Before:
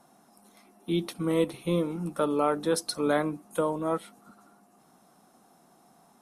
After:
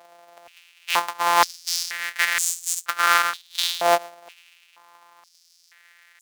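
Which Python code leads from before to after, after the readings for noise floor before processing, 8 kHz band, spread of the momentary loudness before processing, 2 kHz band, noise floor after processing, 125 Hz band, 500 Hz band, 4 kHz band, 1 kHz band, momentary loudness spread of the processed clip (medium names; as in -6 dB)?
-62 dBFS, +15.5 dB, 6 LU, +17.0 dB, -58 dBFS, under -15 dB, -1.5 dB, +14.5 dB, +12.0 dB, 7 LU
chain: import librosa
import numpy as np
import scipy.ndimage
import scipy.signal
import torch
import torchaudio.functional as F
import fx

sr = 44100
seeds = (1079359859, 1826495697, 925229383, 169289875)

y = np.r_[np.sort(x[:len(x) // 256 * 256].reshape(-1, 256), axis=1).ravel(), x[len(x) // 256 * 256:]]
y = fx.filter_held_highpass(y, sr, hz=2.1, low_hz=680.0, high_hz=7200.0)
y = y * librosa.db_to_amplitude(8.0)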